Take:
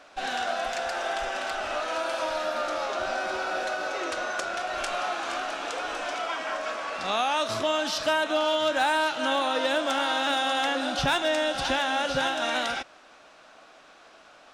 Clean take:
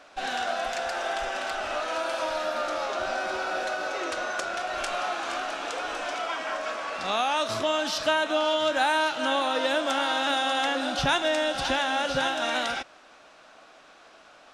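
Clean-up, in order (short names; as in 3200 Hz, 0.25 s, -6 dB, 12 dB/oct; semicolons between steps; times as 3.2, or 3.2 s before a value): clip repair -16.5 dBFS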